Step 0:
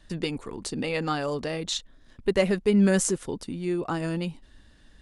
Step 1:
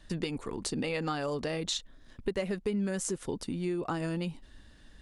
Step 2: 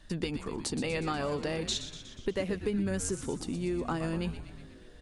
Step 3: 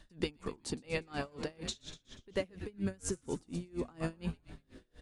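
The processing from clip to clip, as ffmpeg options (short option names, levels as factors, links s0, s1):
-af "acompressor=threshold=0.0355:ratio=6"
-filter_complex "[0:a]asplit=9[s0][s1][s2][s3][s4][s5][s6][s7][s8];[s1]adelay=121,afreqshift=-110,volume=0.282[s9];[s2]adelay=242,afreqshift=-220,volume=0.18[s10];[s3]adelay=363,afreqshift=-330,volume=0.115[s11];[s4]adelay=484,afreqshift=-440,volume=0.0741[s12];[s5]adelay=605,afreqshift=-550,volume=0.0473[s13];[s6]adelay=726,afreqshift=-660,volume=0.0302[s14];[s7]adelay=847,afreqshift=-770,volume=0.0193[s15];[s8]adelay=968,afreqshift=-880,volume=0.0124[s16];[s0][s9][s10][s11][s12][s13][s14][s15][s16]amix=inputs=9:normalize=0"
-af "aeval=exprs='val(0)*pow(10,-29*(0.5-0.5*cos(2*PI*4.2*n/s))/20)':c=same"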